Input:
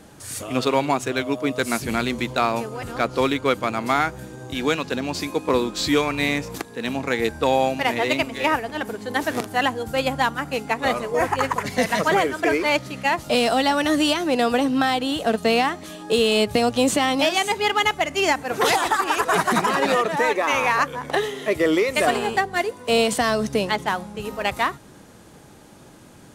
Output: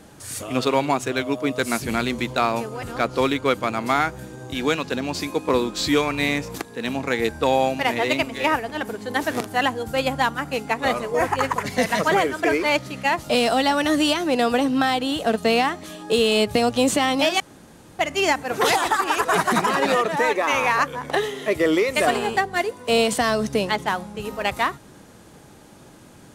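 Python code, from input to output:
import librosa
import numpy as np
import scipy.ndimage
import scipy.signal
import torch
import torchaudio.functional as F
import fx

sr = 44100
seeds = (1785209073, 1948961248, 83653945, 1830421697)

y = fx.edit(x, sr, fx.room_tone_fill(start_s=17.4, length_s=0.59), tone=tone)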